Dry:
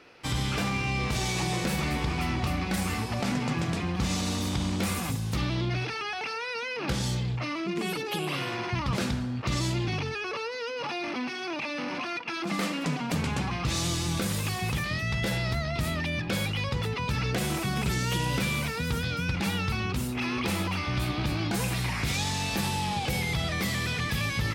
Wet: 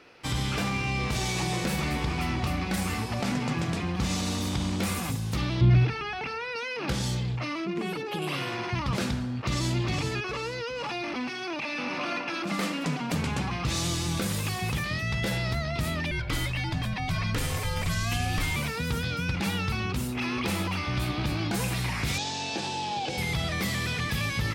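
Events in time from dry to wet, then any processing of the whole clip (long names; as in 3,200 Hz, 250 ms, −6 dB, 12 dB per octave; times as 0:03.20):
0:05.61–0:06.56: bass and treble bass +13 dB, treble −8 dB
0:07.65–0:08.22: high-shelf EQ 3,800 Hz −10.5 dB
0:09.20–0:09.79: delay throw 410 ms, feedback 40%, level −5.5 dB
0:11.61–0:12.14: thrown reverb, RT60 2.8 s, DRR 1.5 dB
0:16.11–0:18.56: frequency shifter −230 Hz
0:22.18–0:23.18: loudspeaker in its box 190–6,900 Hz, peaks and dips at 190 Hz −8 dB, 330 Hz +3 dB, 760 Hz +3 dB, 1,200 Hz −9 dB, 2,000 Hz −8 dB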